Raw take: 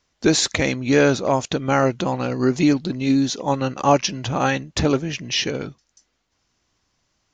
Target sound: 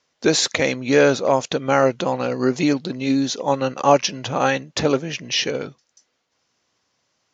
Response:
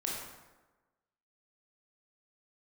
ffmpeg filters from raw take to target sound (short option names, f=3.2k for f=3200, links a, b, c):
-af "highpass=160,equalizer=f=200:t=q:w=4:g=-4,equalizer=f=320:t=q:w=4:g=-4,equalizer=f=510:t=q:w=4:g=4,lowpass=f=7.6k:w=0.5412,lowpass=f=7.6k:w=1.3066,volume=1dB"